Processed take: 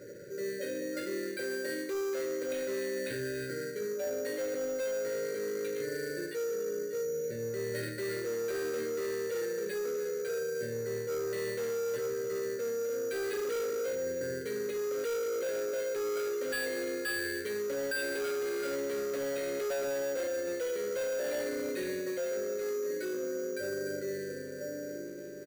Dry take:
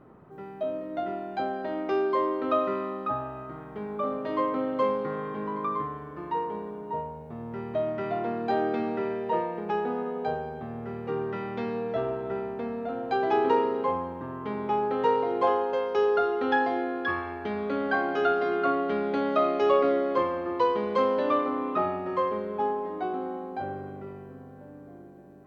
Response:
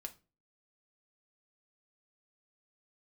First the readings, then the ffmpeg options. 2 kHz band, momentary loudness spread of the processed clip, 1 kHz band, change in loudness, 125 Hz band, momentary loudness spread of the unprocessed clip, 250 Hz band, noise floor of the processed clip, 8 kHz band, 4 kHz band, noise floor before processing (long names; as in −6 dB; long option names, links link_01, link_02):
−2.5 dB, 3 LU, −21.0 dB, −6.0 dB, −7.0 dB, 12 LU, −9.0 dB, −40 dBFS, can't be measured, +0.5 dB, −46 dBFS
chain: -filter_complex "[0:a]asplit=2[link_01][link_02];[link_02]asoftclip=type=hard:threshold=-26.5dB,volume=-4.5dB[link_03];[link_01][link_03]amix=inputs=2:normalize=0,equalizer=frequency=125:width_type=o:width=1:gain=10,equalizer=frequency=250:width_type=o:width=1:gain=-5,equalizer=frequency=500:width_type=o:width=1:gain=10,equalizer=frequency=1000:width_type=o:width=1:gain=7,equalizer=frequency=2000:width_type=o:width=1:gain=8,equalizer=frequency=4000:width_type=o:width=1:gain=-8,aecho=1:1:300:0.158[link_04];[1:a]atrim=start_sample=2205,asetrate=22932,aresample=44100[link_05];[link_04][link_05]afir=irnorm=-1:irlink=0,afftfilt=real='re*(1-between(b*sr/4096,600,1400))':imag='im*(1-between(b*sr/4096,600,1400))':win_size=4096:overlap=0.75,bass=frequency=250:gain=-13,treble=frequency=4000:gain=12,acrusher=samples=7:mix=1:aa=0.000001,asoftclip=type=tanh:threshold=-19.5dB,areverse,acompressor=threshold=-32dB:ratio=16,areverse"